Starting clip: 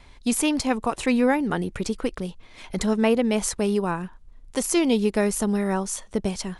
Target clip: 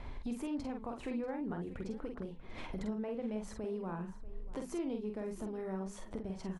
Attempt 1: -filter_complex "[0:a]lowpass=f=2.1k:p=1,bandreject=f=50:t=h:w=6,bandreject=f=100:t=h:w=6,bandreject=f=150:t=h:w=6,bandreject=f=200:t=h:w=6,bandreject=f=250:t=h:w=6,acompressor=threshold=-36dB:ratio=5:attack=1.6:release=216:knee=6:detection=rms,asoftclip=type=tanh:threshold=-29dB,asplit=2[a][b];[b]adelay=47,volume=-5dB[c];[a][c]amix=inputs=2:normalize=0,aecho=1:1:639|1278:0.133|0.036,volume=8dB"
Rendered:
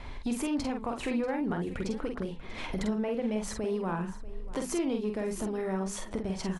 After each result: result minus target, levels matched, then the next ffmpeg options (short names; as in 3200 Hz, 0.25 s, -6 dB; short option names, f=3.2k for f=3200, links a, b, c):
compressor: peak gain reduction -7 dB; 2000 Hz band +3.5 dB
-filter_complex "[0:a]lowpass=f=2.1k:p=1,bandreject=f=50:t=h:w=6,bandreject=f=100:t=h:w=6,bandreject=f=150:t=h:w=6,bandreject=f=200:t=h:w=6,bandreject=f=250:t=h:w=6,acompressor=threshold=-46.5dB:ratio=5:attack=1.6:release=216:knee=6:detection=rms,asoftclip=type=tanh:threshold=-29dB,asplit=2[a][b];[b]adelay=47,volume=-5dB[c];[a][c]amix=inputs=2:normalize=0,aecho=1:1:639|1278:0.133|0.036,volume=8dB"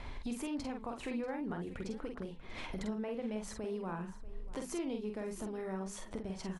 2000 Hz band +4.0 dB
-filter_complex "[0:a]lowpass=f=860:p=1,bandreject=f=50:t=h:w=6,bandreject=f=100:t=h:w=6,bandreject=f=150:t=h:w=6,bandreject=f=200:t=h:w=6,bandreject=f=250:t=h:w=6,acompressor=threshold=-46.5dB:ratio=5:attack=1.6:release=216:knee=6:detection=rms,asoftclip=type=tanh:threshold=-29dB,asplit=2[a][b];[b]adelay=47,volume=-5dB[c];[a][c]amix=inputs=2:normalize=0,aecho=1:1:639|1278:0.133|0.036,volume=8dB"